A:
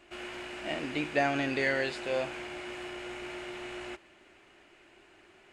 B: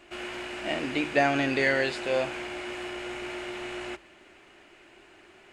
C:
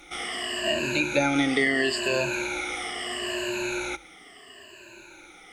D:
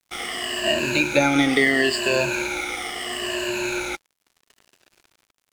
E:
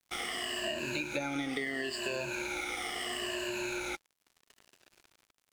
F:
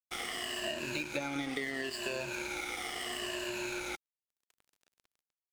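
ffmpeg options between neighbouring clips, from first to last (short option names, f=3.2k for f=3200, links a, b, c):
-af "bandreject=f=50:t=h:w=6,bandreject=f=100:t=h:w=6,bandreject=f=150:t=h:w=6,volume=4.5dB"
-filter_complex "[0:a]afftfilt=real='re*pow(10,20/40*sin(2*PI*(1.4*log(max(b,1)*sr/1024/100)/log(2)-(-0.75)*(pts-256)/sr)))':imag='im*pow(10,20/40*sin(2*PI*(1.4*log(max(b,1)*sr/1024/100)/log(2)-(-0.75)*(pts-256)/sr)))':win_size=1024:overlap=0.75,highshelf=f=4k:g=11.5,acrossover=split=420[a][b];[b]acompressor=threshold=-24dB:ratio=3[c];[a][c]amix=inputs=2:normalize=0"
-af "aeval=exprs='sgn(val(0))*max(abs(val(0))-0.00841,0)':c=same,volume=5.5dB"
-af "acompressor=threshold=-28dB:ratio=6,volume=-4.5dB"
-af "aeval=exprs='sgn(val(0))*max(abs(val(0))-0.00398,0)':c=same"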